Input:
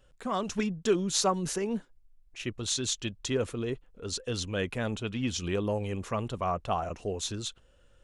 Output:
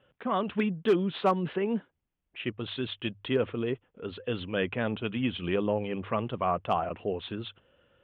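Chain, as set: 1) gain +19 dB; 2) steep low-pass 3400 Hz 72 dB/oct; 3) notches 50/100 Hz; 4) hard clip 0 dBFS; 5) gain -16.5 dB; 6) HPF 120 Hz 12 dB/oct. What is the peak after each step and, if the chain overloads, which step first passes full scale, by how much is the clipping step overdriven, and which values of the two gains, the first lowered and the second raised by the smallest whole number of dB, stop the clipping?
+8.5, +5.5, +5.5, 0.0, -16.5, -13.5 dBFS; step 1, 5.5 dB; step 1 +13 dB, step 5 -10.5 dB

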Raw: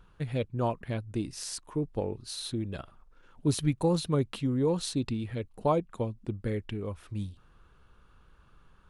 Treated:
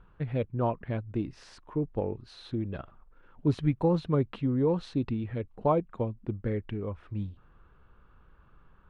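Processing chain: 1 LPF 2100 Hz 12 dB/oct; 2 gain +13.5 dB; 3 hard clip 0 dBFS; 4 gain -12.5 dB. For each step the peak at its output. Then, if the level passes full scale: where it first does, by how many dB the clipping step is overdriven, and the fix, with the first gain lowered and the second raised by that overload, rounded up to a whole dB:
-15.0, -1.5, -1.5, -14.0 dBFS; no overload

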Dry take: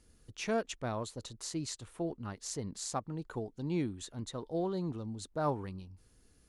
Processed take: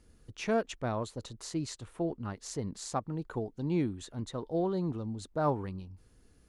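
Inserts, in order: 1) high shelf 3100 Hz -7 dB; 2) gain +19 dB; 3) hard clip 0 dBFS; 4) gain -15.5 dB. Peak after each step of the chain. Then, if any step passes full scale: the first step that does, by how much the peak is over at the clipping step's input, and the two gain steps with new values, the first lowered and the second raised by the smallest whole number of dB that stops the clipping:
-21.0, -2.0, -2.0, -17.5 dBFS; no overload

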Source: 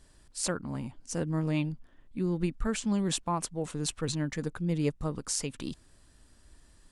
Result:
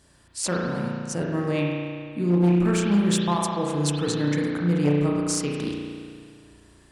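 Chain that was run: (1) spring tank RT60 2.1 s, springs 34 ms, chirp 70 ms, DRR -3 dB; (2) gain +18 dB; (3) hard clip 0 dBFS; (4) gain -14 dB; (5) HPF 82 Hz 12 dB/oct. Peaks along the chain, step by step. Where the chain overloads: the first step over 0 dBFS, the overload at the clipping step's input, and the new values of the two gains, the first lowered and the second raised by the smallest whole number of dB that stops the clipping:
-11.5, +6.5, 0.0, -14.0, -10.5 dBFS; step 2, 6.5 dB; step 2 +11 dB, step 4 -7 dB

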